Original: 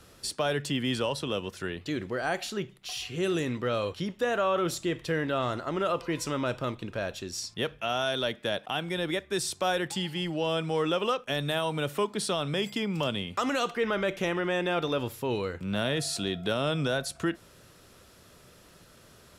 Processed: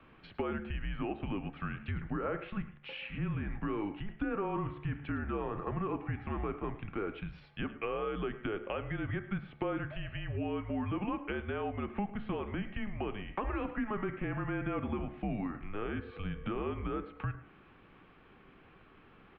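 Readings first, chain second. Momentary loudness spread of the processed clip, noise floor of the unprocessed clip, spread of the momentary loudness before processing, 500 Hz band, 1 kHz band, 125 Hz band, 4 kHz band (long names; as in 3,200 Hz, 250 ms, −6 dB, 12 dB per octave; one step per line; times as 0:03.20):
5 LU, −56 dBFS, 6 LU, −9.5 dB, −7.5 dB, −3.0 dB, −19.0 dB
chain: notch filter 1,200 Hz, Q 15
treble cut that deepens with the level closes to 2,100 Hz, closed at −28.5 dBFS
hum removal 71.2 Hz, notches 35
downward compressor, threshold −31 dBFS, peak gain reduction 8 dB
on a send: single-tap delay 107 ms −16.5 dB
on the sum: single-sideband voice off tune −210 Hz 210–2,900 Hz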